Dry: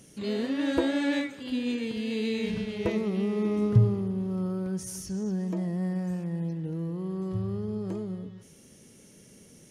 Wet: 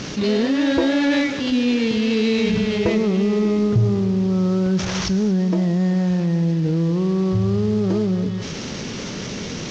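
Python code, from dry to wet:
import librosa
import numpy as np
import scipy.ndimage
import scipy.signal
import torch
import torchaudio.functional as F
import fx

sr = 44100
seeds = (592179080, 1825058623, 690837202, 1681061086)

p1 = fx.cvsd(x, sr, bps=32000)
p2 = fx.rider(p1, sr, range_db=10, speed_s=0.5)
p3 = p1 + (p2 * 10.0 ** (0.5 / 20.0))
p4 = 10.0 ** (-9.5 / 20.0) * np.tanh(p3 / 10.0 ** (-9.5 / 20.0))
y = fx.env_flatten(p4, sr, amount_pct=50)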